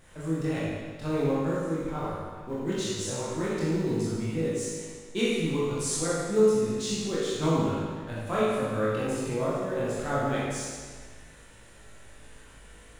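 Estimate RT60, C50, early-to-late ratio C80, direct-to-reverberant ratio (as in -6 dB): 1.6 s, -3.0 dB, -0.5 dB, -9.0 dB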